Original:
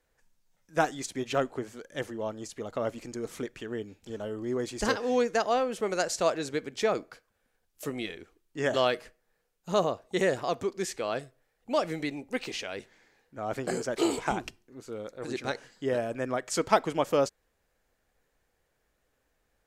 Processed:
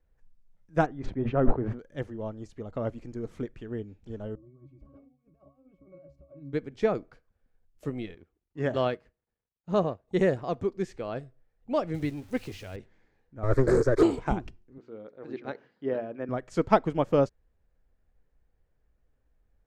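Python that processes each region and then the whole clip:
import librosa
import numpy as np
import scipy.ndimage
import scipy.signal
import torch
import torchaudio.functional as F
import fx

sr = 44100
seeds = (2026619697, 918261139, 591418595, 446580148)

y = fx.chain(x, sr, fx.lowpass(hz=1600.0, slope=12),
    fx.sustainer(db_per_s=54.0), at=(0.86, 1.79))
y = fx.chain(y, sr, fx.peak_eq(hz=1700.0, db=-6.5, octaves=1.2),
    fx.over_compress(threshold_db=-32.0, ratio=-0.5),
    fx.octave_resonator(note='C#', decay_s=0.27), at=(4.35, 6.53))
y = fx.chain(y, sr, fx.law_mismatch(coded='A'),
    fx.highpass(hz=58.0, slope=12),
    fx.high_shelf(hz=8000.0, db=-7.5), at=(8.14, 10.08))
y = fx.chain(y, sr, fx.crossing_spikes(level_db=-28.5),
    fx.peak_eq(hz=100.0, db=13.0, octaves=0.52), at=(11.94, 12.76))
y = fx.chain(y, sr, fx.leveller(passes=3),
    fx.fixed_phaser(hz=760.0, stages=6),
    fx.doppler_dist(depth_ms=0.12), at=(13.43, 14.03))
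y = fx.chain(y, sr, fx.bandpass_edges(low_hz=230.0, high_hz=4400.0),
    fx.air_absorb(metres=75.0),
    fx.hum_notches(base_hz=60, count=7), at=(14.78, 16.29))
y = fx.riaa(y, sr, side='playback')
y = fx.upward_expand(y, sr, threshold_db=-33.0, expansion=1.5)
y = F.gain(torch.from_numpy(y), 2.0).numpy()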